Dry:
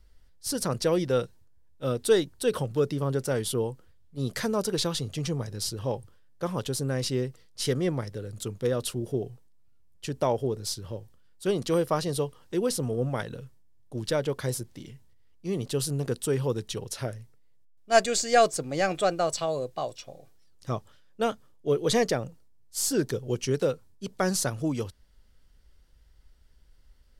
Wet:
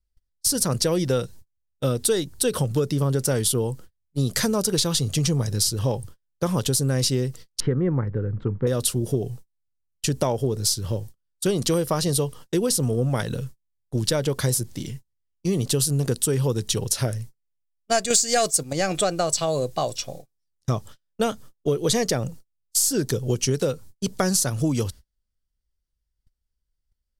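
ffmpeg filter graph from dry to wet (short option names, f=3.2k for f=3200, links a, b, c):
-filter_complex "[0:a]asettb=1/sr,asplit=3[a][b][c];[a]atrim=end=7.604[d];[b]atrim=start=7.6:end=8.67,asetpts=PTS-STARTPTS,afade=t=in:d=0.004:c=qsin,afade=t=out:st=1.066:d=0.004:c=qsin,lowpass=f=1.7k:w=0.5412,lowpass=f=1.7k:w=1.3066,equalizer=f=650:w=5:g=-10[e];[c]atrim=start=8.666[f];[d][e]acrossfade=d=0.004:c1=hsin:c2=qsin[g];[g][f]acrossfade=d=0.004:c1=qsin:c2=hsin,asettb=1/sr,asplit=3[h][i][j];[h]atrim=end=18.104[k];[i]atrim=start=18.1:end=18.73,asetpts=PTS-STARTPTS,afade=t=in:d=0.004:c=qsin,afade=t=out:st=0.626:d=0.004:c=qsin,agate=range=-8dB:threshold=-35dB:ratio=16:release=100:detection=peak,highshelf=f=4.7k:g=7.5,acontrast=89[l];[j]atrim=start=18.726[m];[k][l]acrossfade=d=0.004:c1=hsin:c2=qsin[n];[n][m]acrossfade=d=0.004:c1=qsin:c2=hsin,agate=range=-33dB:threshold=-47dB:ratio=16:detection=peak,bass=f=250:g=5,treble=f=4k:g=9,acompressor=threshold=-27dB:ratio=6,volume=8dB"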